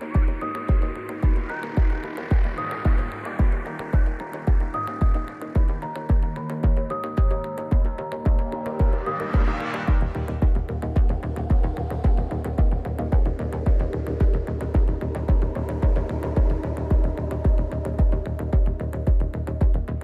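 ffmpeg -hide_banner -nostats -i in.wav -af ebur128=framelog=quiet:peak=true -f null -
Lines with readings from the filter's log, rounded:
Integrated loudness:
  I:         -24.5 LUFS
  Threshold: -34.5 LUFS
Loudness range:
  LRA:         1.0 LU
  Threshold: -44.5 LUFS
  LRA low:   -25.0 LUFS
  LRA high:  -24.0 LUFS
True peak:
  Peak:      -10.4 dBFS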